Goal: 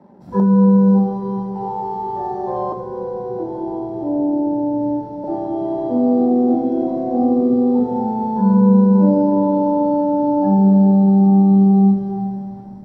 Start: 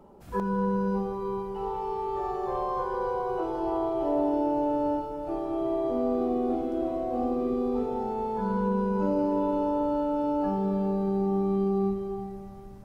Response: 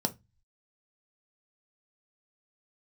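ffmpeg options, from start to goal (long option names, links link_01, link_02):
-filter_complex "[0:a]asettb=1/sr,asplit=3[link_01][link_02][link_03];[link_01]atrim=end=2.724[link_04];[link_02]atrim=start=2.72:end=5.24,asetpts=PTS-STARTPTS,afade=type=in:duration=0.004:curve=qsin,afade=type=out:start_time=2.516:duration=0.004:curve=qsin,acrossover=split=450[link_05][link_06];[link_06]acompressor=threshold=-42dB:ratio=3[link_07];[link_05][link_07]amix=inputs=2:normalize=0[link_08];[link_03]atrim=start=5.236[link_09];[link_04][link_08]acrossfade=duration=0.004:curve1=hsin:curve2=qsin[link_10];[link_10][link_09]acrossfade=duration=0.004:curve1=qsin:curve2=hsin,aeval=exprs='sgn(val(0))*max(abs(val(0))-0.00141,0)':channel_layout=same,highshelf=frequency=2600:gain=-9.5[link_11];[1:a]atrim=start_sample=2205[link_12];[link_11][link_12]afir=irnorm=-1:irlink=0"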